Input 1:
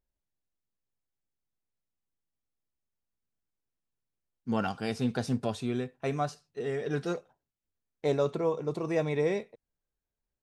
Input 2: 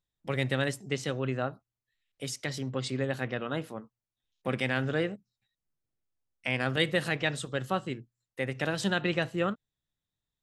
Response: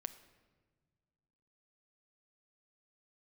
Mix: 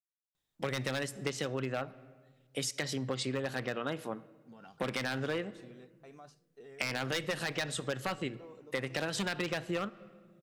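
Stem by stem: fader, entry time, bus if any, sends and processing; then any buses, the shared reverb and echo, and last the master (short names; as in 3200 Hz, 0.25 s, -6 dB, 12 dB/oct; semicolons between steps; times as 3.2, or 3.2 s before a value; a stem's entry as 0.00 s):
-17.5 dB, 0.00 s, send -14 dB, expander -50 dBFS; notches 50/100/150 Hz; limiter -26.5 dBFS, peak gain reduction 10.5 dB
+2.0 dB, 0.35 s, send -3 dB, one-sided fold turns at -21.5 dBFS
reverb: on, pre-delay 7 ms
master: low shelf 130 Hz -10 dB; compressor, threshold -31 dBFS, peak gain reduction 11.5 dB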